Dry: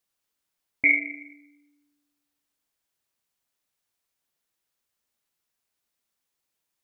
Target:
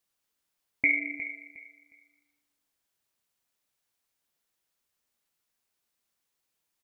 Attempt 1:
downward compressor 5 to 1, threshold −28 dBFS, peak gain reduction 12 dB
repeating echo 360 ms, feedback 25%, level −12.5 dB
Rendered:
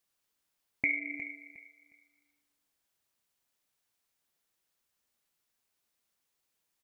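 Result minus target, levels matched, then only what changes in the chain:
downward compressor: peak gain reduction +6 dB
change: downward compressor 5 to 1, threshold −20.5 dBFS, peak gain reduction 6 dB

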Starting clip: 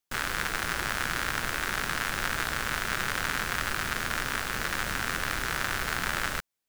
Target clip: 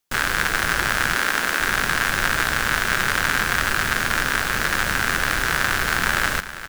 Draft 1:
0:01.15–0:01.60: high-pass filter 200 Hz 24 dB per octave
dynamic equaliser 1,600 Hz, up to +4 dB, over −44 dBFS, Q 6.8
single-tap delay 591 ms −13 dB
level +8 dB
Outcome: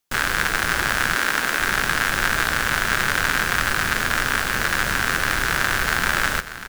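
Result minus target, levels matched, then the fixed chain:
echo 193 ms late
0:01.15–0:01.60: high-pass filter 200 Hz 24 dB per octave
dynamic equaliser 1,600 Hz, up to +4 dB, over −44 dBFS, Q 6.8
single-tap delay 398 ms −13 dB
level +8 dB

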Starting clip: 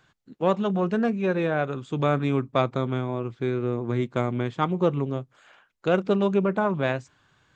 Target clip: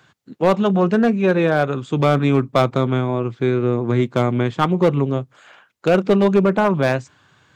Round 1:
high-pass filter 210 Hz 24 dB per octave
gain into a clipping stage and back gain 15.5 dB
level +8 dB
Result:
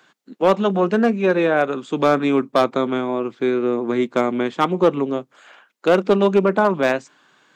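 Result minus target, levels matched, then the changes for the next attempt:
125 Hz band −9.5 dB
change: high-pass filter 76 Hz 24 dB per octave

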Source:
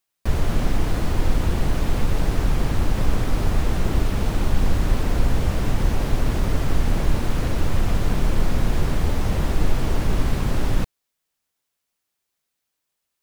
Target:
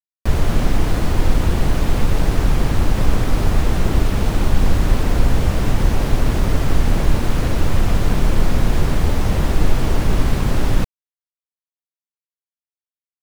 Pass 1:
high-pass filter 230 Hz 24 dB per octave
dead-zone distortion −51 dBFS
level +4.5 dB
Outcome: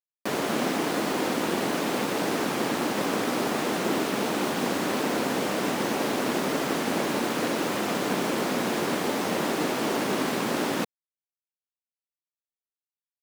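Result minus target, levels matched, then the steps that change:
250 Hz band +3.0 dB
remove: high-pass filter 230 Hz 24 dB per octave

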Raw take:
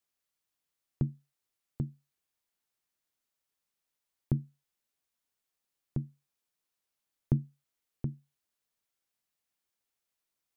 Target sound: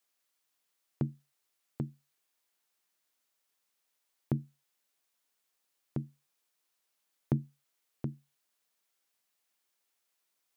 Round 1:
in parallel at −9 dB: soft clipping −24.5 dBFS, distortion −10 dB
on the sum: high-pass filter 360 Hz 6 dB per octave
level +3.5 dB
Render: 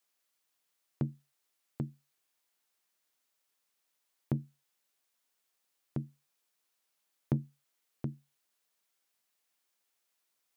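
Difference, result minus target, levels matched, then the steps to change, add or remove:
soft clipping: distortion +12 dB
change: soft clipping −14.5 dBFS, distortion −21 dB

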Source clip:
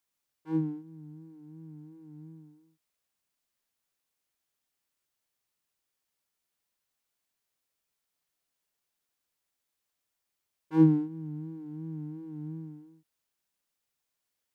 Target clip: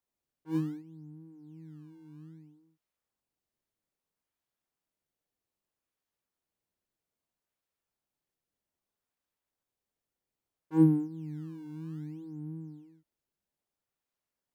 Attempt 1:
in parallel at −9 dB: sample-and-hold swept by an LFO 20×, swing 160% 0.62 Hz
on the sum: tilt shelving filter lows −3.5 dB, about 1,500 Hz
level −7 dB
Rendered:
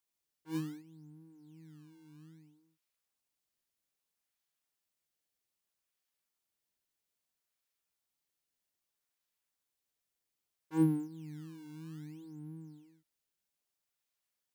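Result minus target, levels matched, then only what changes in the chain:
2,000 Hz band +7.0 dB
change: tilt shelving filter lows +3 dB, about 1,500 Hz

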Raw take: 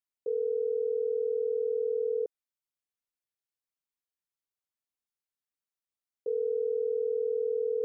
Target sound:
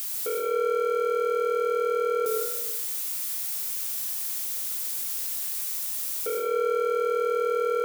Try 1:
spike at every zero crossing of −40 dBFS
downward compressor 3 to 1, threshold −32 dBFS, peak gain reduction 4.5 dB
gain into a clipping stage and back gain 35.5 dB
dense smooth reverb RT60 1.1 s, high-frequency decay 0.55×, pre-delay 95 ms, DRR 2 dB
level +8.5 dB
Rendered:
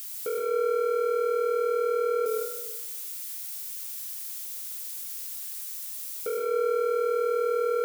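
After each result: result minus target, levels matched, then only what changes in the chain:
spike at every zero crossing: distortion −7 dB; 250 Hz band −3.0 dB
change: spike at every zero crossing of −33 dBFS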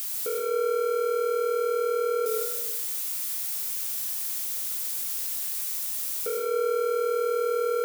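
250 Hz band −4.5 dB
add after downward compressor: high-pass with resonance 340 Hz, resonance Q 1.5

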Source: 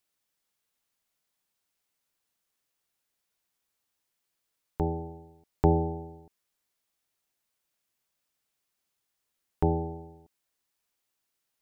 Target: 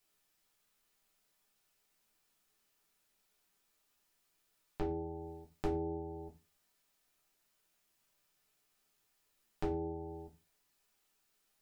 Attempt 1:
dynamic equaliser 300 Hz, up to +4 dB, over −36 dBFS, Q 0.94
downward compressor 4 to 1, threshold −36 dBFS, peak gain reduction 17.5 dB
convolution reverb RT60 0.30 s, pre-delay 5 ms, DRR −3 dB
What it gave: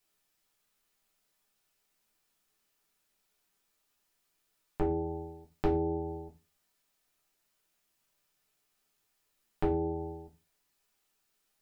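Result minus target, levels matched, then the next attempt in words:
downward compressor: peak gain reduction −7 dB
dynamic equaliser 300 Hz, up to +4 dB, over −36 dBFS, Q 0.94
downward compressor 4 to 1, threshold −45 dBFS, peak gain reduction 24.5 dB
convolution reverb RT60 0.30 s, pre-delay 5 ms, DRR −3 dB

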